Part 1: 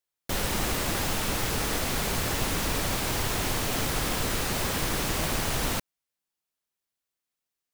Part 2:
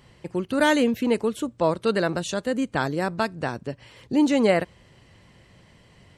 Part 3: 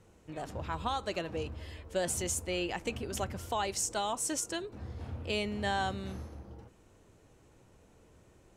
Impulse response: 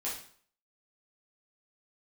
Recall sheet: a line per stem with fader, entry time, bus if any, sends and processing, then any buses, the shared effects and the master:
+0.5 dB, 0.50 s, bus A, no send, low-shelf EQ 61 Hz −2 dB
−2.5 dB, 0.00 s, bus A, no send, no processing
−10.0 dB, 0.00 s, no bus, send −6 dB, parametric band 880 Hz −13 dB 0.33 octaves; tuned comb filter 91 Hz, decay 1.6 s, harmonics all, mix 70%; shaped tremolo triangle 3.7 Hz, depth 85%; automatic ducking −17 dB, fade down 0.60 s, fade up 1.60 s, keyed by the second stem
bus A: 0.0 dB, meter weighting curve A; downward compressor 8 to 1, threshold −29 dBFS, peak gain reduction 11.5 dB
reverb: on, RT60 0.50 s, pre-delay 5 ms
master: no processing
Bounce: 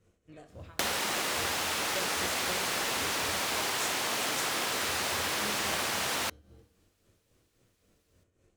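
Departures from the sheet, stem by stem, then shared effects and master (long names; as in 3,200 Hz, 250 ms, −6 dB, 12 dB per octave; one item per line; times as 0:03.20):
stem 1 +0.5 dB → +12.5 dB
stem 2: muted
stem 3 −10.0 dB → +1.5 dB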